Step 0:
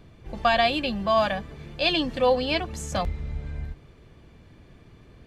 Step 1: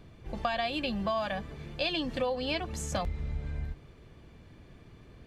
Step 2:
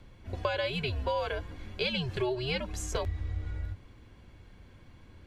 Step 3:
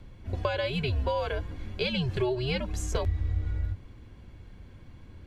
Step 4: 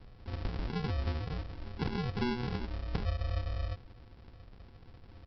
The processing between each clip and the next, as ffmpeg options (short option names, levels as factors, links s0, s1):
-af "acompressor=threshold=0.0562:ratio=12,volume=0.794"
-af "afreqshift=-130"
-af "lowshelf=f=360:g=6"
-af "asuperstop=centerf=1500:order=8:qfactor=1,aresample=11025,acrusher=samples=18:mix=1:aa=0.000001,aresample=44100,volume=0.562"